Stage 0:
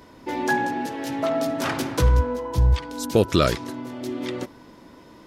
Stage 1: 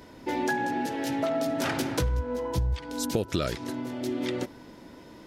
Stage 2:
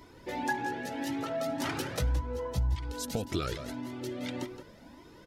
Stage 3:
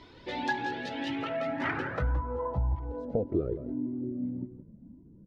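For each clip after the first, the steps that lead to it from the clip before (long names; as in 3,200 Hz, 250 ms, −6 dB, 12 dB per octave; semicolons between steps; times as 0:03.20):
parametric band 1,100 Hz −7.5 dB 0.25 octaves; downward compressor 6 to 1, threshold −24 dBFS, peak gain reduction 11.5 dB
slap from a distant wall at 29 metres, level −10 dB; flanger whose copies keep moving one way rising 1.8 Hz
low-pass filter sweep 3,800 Hz → 200 Hz, 0:00.85–0:04.38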